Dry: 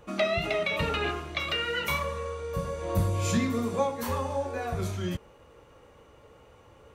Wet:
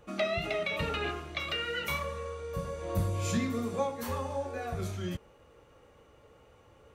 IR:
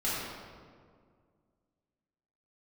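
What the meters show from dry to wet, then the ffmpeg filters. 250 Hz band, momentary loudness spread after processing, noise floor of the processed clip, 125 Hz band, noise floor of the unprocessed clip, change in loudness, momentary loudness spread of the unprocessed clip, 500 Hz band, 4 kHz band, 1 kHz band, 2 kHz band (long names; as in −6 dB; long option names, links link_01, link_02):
−4.0 dB, 7 LU, −60 dBFS, −4.0 dB, −56 dBFS, −4.0 dB, 7 LU, −4.0 dB, −4.0 dB, −4.5 dB, −4.0 dB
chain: -af "bandreject=frequency=980:width=11,volume=-4dB"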